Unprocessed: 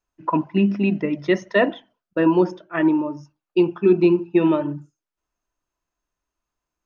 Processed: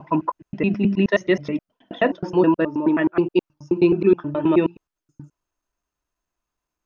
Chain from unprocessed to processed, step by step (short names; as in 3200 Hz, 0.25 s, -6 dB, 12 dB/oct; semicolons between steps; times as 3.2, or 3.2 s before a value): slices in reverse order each 0.106 s, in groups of 5